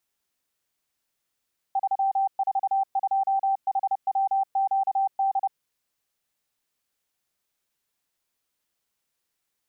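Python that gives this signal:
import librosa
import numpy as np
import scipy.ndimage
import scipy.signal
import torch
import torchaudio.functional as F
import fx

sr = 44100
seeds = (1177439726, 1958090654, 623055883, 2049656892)

y = fx.morse(sr, text='342HWQD', wpm=30, hz=780.0, level_db=-20.0)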